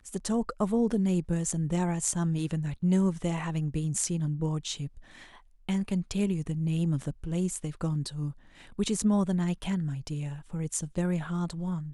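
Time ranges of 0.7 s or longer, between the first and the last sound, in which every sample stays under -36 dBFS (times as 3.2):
4.87–5.69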